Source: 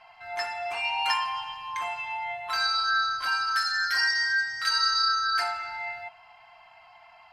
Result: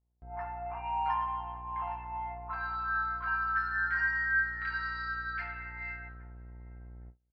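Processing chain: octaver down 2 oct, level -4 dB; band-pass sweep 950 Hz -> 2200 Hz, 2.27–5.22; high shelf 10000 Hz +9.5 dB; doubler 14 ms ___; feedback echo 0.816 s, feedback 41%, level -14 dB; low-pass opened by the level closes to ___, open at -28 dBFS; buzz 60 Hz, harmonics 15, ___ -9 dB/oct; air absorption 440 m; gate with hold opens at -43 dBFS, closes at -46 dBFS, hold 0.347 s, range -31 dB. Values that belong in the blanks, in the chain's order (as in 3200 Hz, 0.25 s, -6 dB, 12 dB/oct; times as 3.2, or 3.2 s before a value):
-14 dB, 370 Hz, -47 dBFS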